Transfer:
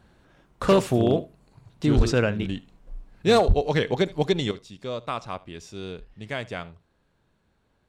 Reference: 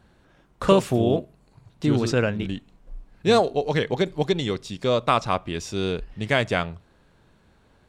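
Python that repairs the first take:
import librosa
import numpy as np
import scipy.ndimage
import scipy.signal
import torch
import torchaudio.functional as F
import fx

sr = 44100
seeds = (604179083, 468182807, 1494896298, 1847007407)

y = fx.fix_declip(x, sr, threshold_db=-11.5)
y = fx.highpass(y, sr, hz=140.0, slope=24, at=(1.96, 2.08), fade=0.02)
y = fx.highpass(y, sr, hz=140.0, slope=24, at=(3.47, 3.59), fade=0.02)
y = fx.fix_echo_inverse(y, sr, delay_ms=75, level_db=-21.0)
y = fx.fix_level(y, sr, at_s=4.51, step_db=10.0)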